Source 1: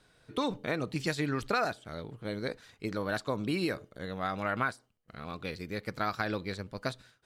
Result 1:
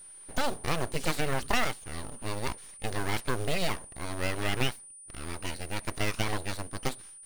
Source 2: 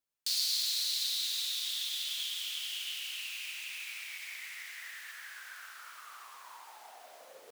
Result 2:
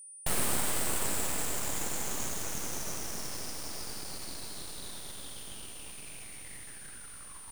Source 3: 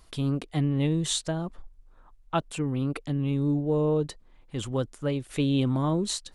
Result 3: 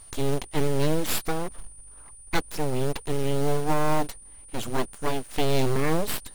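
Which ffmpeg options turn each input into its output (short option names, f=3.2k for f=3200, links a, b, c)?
-af "aeval=exprs='abs(val(0))':c=same,acrusher=bits=5:mode=log:mix=0:aa=0.000001,aeval=exprs='val(0)+0.00282*sin(2*PI*9300*n/s)':c=same,volume=4.5dB"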